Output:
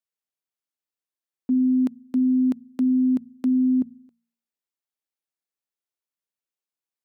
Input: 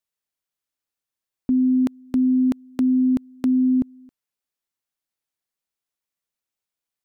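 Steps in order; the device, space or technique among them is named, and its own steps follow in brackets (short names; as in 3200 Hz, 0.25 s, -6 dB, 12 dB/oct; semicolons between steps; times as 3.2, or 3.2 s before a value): filter by subtraction (in parallel: LPF 290 Hz 12 dB/oct + phase invert); on the sum: dynamic EQ 230 Hz, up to +6 dB, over -33 dBFS, Q 3; de-hum 58.32 Hz, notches 4; gain -7 dB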